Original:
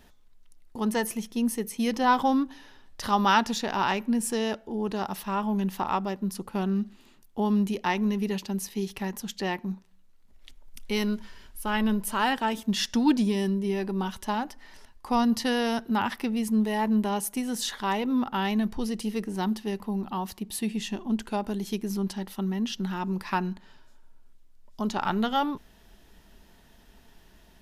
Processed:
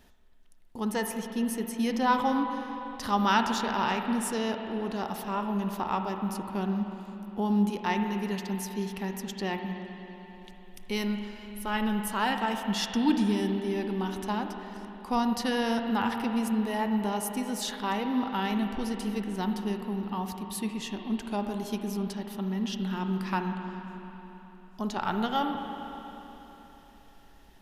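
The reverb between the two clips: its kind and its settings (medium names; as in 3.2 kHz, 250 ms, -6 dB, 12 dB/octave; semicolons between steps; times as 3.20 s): spring tank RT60 3.8 s, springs 39/58 ms, chirp 65 ms, DRR 4.5 dB; trim -3 dB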